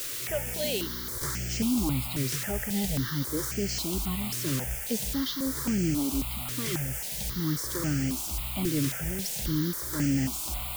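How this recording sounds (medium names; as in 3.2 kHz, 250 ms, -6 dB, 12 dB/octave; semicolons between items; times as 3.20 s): a quantiser's noise floor 6-bit, dither triangular; notches that jump at a steady rate 3.7 Hz 210–3800 Hz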